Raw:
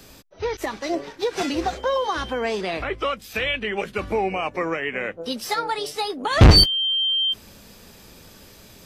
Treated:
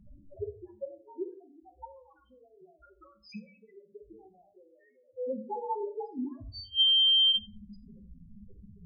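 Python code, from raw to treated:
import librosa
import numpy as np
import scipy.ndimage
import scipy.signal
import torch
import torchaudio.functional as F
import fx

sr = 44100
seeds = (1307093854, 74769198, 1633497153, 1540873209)

y = fx.ladder_lowpass(x, sr, hz=820.0, resonance_pct=45, at=(5.02, 6.0), fade=0.02)
y = fx.gate_flip(y, sr, shuts_db=-18.0, range_db=-35)
y = fx.spec_topn(y, sr, count=2)
y = fx.room_shoebox(y, sr, seeds[0], volume_m3=270.0, walls='furnished', distance_m=0.98)
y = y * librosa.db_to_amplitude(3.5)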